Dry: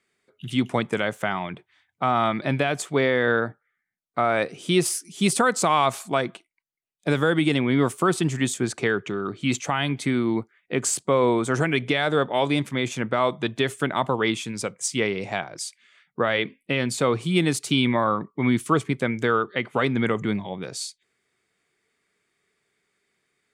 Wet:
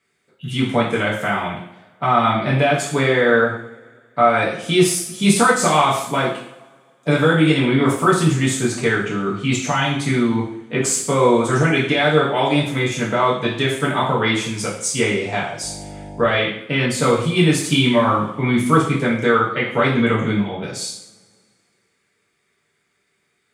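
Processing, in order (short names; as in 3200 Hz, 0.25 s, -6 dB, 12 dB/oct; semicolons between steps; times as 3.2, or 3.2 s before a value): 15.61–16.29 buzz 50 Hz, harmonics 19, -40 dBFS -3 dB/oct; two-slope reverb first 0.59 s, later 2.2 s, from -24 dB, DRR -6 dB; gain -1 dB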